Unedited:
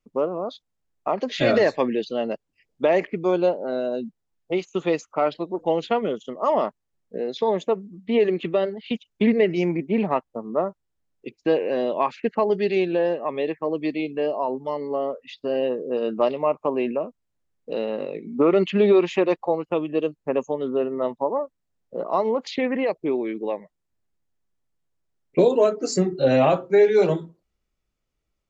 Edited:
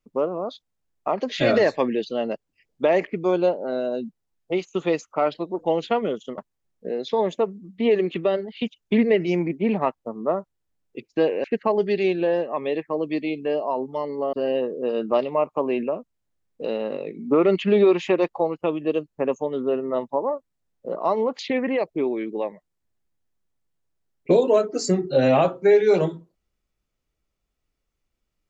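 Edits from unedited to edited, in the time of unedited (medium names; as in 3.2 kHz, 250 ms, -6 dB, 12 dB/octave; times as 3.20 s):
6.38–6.67 s: delete
11.73–12.16 s: delete
15.05–15.41 s: delete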